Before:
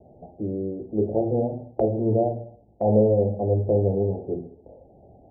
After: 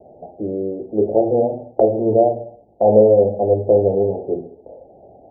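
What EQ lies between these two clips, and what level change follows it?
parametric band 610 Hz +14 dB 2.6 octaves
−4.5 dB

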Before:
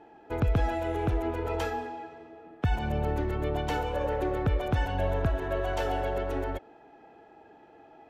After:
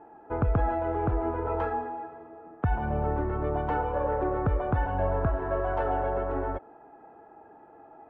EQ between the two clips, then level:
low-pass with resonance 1,200 Hz, resonance Q 1.8
0.0 dB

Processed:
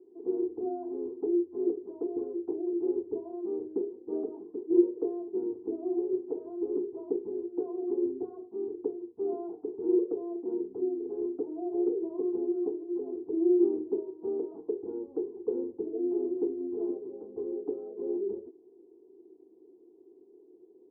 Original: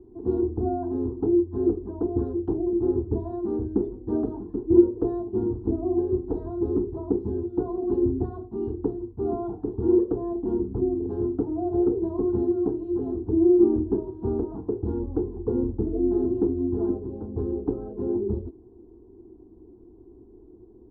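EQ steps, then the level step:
four-pole ladder band-pass 490 Hz, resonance 50%
+2.5 dB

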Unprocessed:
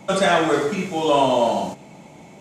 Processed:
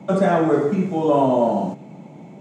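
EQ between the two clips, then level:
dynamic equaliser 3,200 Hz, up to −8 dB, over −38 dBFS, Q 1
high-pass filter 140 Hz 24 dB per octave
spectral tilt −3.5 dB per octave
−2.0 dB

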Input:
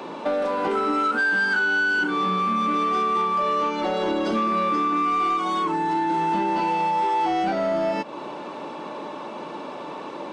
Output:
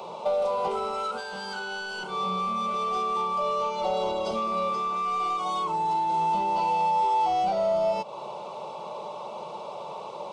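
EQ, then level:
parametric band 270 Hz −6 dB 0.25 octaves
phaser with its sweep stopped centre 700 Hz, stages 4
0.0 dB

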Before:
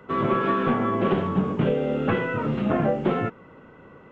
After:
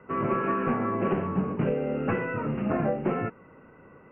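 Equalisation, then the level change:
Butterworth low-pass 2,800 Hz 96 dB per octave
−4.0 dB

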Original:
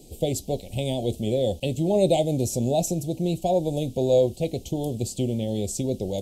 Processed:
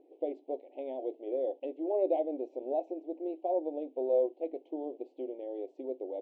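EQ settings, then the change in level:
linear-phase brick-wall high-pass 270 Hz
low-pass filter 1,700 Hz 24 dB per octave
−8.0 dB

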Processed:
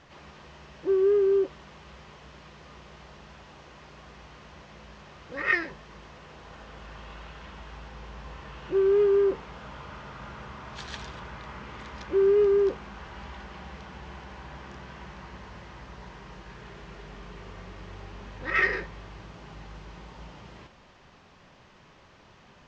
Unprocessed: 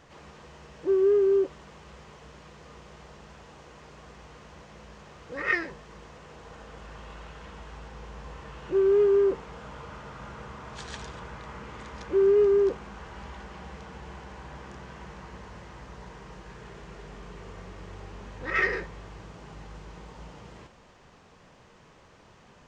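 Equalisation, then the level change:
high-frequency loss of the air 170 metres
high-shelf EQ 3,000 Hz +11.5 dB
notch filter 470 Hz, Q 12
0.0 dB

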